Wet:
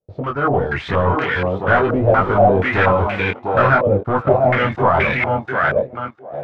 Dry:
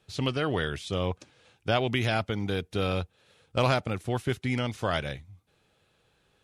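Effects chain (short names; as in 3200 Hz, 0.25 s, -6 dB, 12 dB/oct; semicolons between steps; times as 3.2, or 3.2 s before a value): reverse delay 0.414 s, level -9.5 dB; reverb removal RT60 0.51 s; in parallel at -3 dB: level quantiser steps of 23 dB; on the sum: sample leveller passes 5; AGC; 1.89–2.51 added noise pink -18 dBFS; chorus 0.49 Hz, delay 20 ms, depth 3.6 ms; on a send: thinning echo 0.701 s, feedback 16%, high-pass 250 Hz, level -3 dB; on the sum: stepped low-pass 4.2 Hz 580–2200 Hz; gain -8.5 dB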